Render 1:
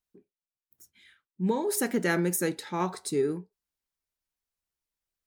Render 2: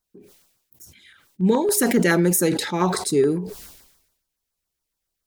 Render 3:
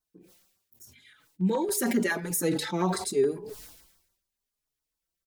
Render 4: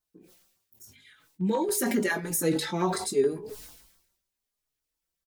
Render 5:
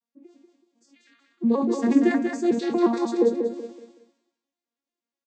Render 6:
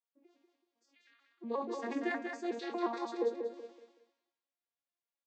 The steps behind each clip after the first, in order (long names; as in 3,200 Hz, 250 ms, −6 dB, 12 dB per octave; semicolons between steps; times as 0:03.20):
auto-filter notch saw down 7.1 Hz 680–3,100 Hz; level that may fall only so fast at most 63 dB per second; level +8.5 dB
mains-hum notches 50/100/150 Hz; in parallel at −2 dB: brickwall limiter −18 dBFS, peak gain reduction 11.5 dB; on the sum: barber-pole flanger 4.2 ms +0.83 Hz; level −7.5 dB
double-tracking delay 19 ms −8 dB
vocoder with an arpeggio as carrier minor triad, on A#3, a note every 119 ms; on a send: repeating echo 188 ms, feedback 32%, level −6 dB; on the sum: level +5.5 dB
band-pass filter 570–4,500 Hz; level −6.5 dB